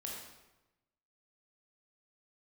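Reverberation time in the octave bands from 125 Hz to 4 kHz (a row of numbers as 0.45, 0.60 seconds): 1.3, 1.1, 1.0, 1.0, 0.90, 0.75 seconds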